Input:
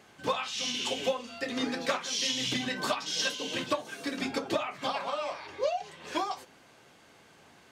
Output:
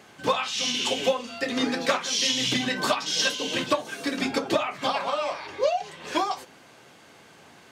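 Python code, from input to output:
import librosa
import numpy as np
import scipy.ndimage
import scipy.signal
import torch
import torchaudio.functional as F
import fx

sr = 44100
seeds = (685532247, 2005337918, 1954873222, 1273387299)

y = scipy.signal.sosfilt(scipy.signal.butter(2, 79.0, 'highpass', fs=sr, output='sos'), x)
y = y * librosa.db_to_amplitude(6.0)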